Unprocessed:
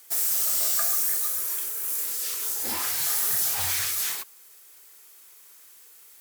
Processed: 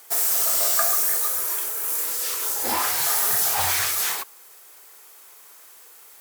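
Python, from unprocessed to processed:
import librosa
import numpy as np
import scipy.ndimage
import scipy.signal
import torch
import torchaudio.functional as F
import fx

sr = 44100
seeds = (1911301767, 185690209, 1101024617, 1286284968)

y = fx.peak_eq(x, sr, hz=790.0, db=9.0, octaves=2.0)
y = y * 10.0 ** (3.0 / 20.0)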